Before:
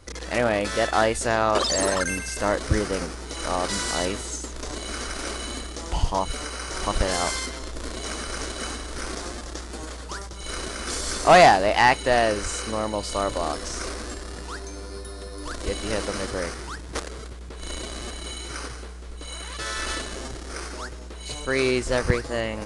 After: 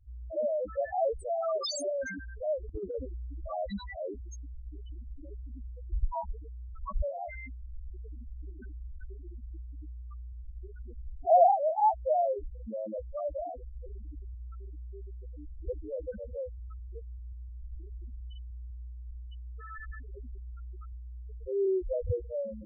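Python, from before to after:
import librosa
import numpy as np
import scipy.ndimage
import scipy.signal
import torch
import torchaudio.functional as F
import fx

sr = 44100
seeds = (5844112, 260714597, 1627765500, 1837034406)

y = fx.spec_topn(x, sr, count=2)
y = fx.over_compress(y, sr, threshold_db=-32.0, ratio=-0.5, at=(2.62, 3.77), fade=0.02)
y = y * librosa.db_to_amplitude(-2.5)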